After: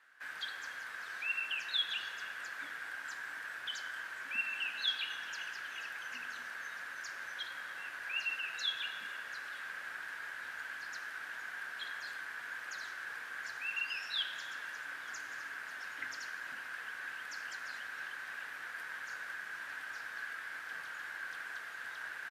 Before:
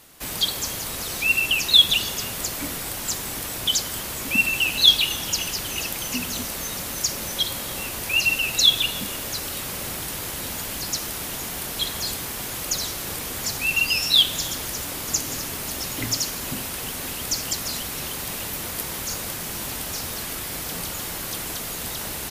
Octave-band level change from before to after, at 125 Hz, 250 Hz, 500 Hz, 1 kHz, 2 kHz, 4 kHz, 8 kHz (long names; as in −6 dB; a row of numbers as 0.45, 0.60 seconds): below −35 dB, −30.5 dB, −23.5 dB, −11.5 dB, −9.0 dB, −19.5 dB, −28.5 dB